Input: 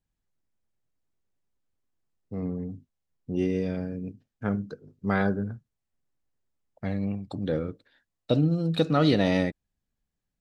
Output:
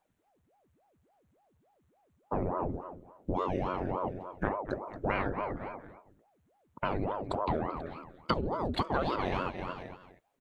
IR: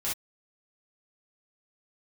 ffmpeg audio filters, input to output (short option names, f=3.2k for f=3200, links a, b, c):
-af "equalizer=f=4.9k:w=4.4:g=-11,aecho=1:1:229|458|687:0.15|0.0404|0.0109,acompressor=threshold=-35dB:ratio=12,equalizer=f=1k:w=0.38:g=7,aeval=exprs='val(0)*sin(2*PI*450*n/s+450*0.85/3.5*sin(2*PI*3.5*n/s))':c=same,volume=7dB"